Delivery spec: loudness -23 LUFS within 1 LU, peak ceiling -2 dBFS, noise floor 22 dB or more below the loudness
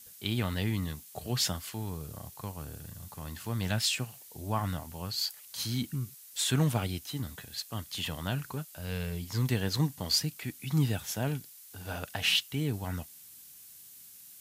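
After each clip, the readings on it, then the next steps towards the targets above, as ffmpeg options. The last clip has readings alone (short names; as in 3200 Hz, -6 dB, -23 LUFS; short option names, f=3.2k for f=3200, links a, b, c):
noise floor -52 dBFS; noise floor target -55 dBFS; loudness -32.5 LUFS; peak -14.5 dBFS; loudness target -23.0 LUFS
-> -af "afftdn=nr=6:nf=-52"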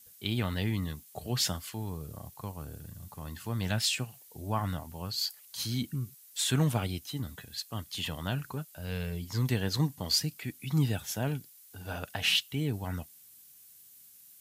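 noise floor -56 dBFS; loudness -32.5 LUFS; peak -14.5 dBFS; loudness target -23.0 LUFS
-> -af "volume=9.5dB"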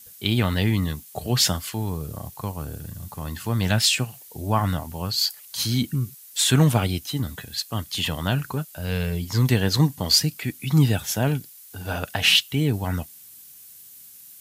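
loudness -23.0 LUFS; peak -5.0 dBFS; noise floor -46 dBFS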